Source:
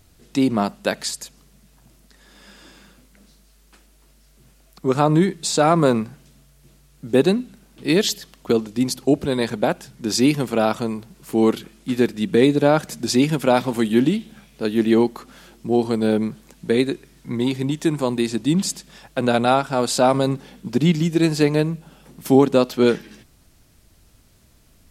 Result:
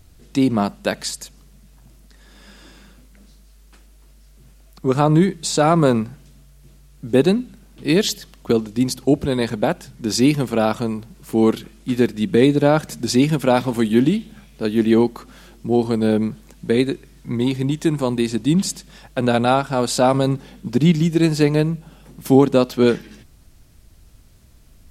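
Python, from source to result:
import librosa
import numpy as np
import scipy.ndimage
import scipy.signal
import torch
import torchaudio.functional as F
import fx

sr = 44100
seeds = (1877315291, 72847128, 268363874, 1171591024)

y = fx.low_shelf(x, sr, hz=120.0, db=8.5)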